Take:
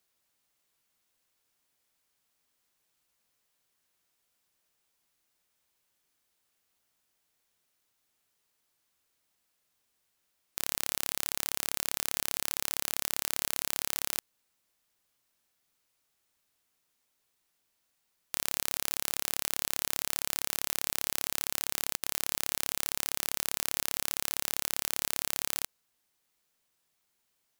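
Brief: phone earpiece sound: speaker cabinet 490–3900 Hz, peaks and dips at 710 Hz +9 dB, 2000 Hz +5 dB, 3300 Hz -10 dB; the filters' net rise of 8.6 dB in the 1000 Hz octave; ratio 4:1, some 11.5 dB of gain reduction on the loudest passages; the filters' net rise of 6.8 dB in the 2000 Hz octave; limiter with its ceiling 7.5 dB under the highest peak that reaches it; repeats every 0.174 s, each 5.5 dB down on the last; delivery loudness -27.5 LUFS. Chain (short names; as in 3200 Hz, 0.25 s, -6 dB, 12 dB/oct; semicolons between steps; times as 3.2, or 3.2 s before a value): bell 1000 Hz +7 dB; bell 2000 Hz +4 dB; compressor 4:1, threshold -37 dBFS; limiter -18.5 dBFS; speaker cabinet 490–3900 Hz, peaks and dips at 710 Hz +9 dB, 2000 Hz +5 dB, 3300 Hz -10 dB; feedback echo 0.174 s, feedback 53%, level -5.5 dB; gain +23 dB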